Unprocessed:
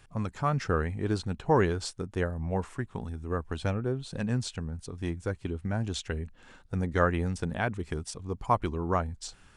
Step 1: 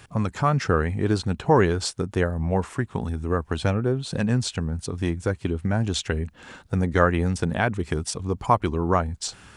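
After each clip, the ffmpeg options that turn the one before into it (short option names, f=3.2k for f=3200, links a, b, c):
-filter_complex "[0:a]highpass=62,asplit=2[a][b];[b]acompressor=threshold=-36dB:ratio=6,volume=2dB[c];[a][c]amix=inputs=2:normalize=0,volume=4dB"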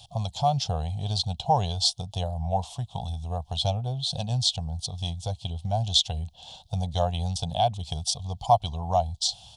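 -af "firequalizer=gain_entry='entry(130,0);entry(320,-27);entry(710,10);entry(1300,-23);entry(1900,-25);entry(3300,13);entry(7600,1)':delay=0.05:min_phase=1,volume=-2.5dB"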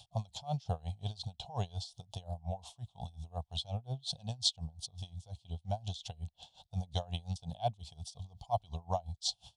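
-af "aeval=exprs='val(0)*pow(10,-25*(0.5-0.5*cos(2*PI*5.6*n/s))/20)':c=same,volume=-4.5dB"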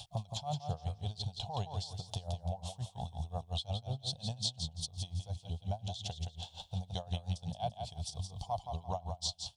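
-af "acompressor=threshold=-47dB:ratio=3,aecho=1:1:170|340|510|680:0.473|0.137|0.0398|0.0115,volume=9dB"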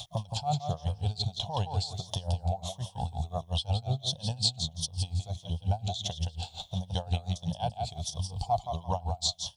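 -af "afftfilt=real='re*pow(10,8/40*sin(2*PI*(1.2*log(max(b,1)*sr/1024/100)/log(2)-(-1.5)*(pts-256)/sr)))':imag='im*pow(10,8/40*sin(2*PI*(1.2*log(max(b,1)*sr/1024/100)/log(2)-(-1.5)*(pts-256)/sr)))':win_size=1024:overlap=0.75,volume=6dB"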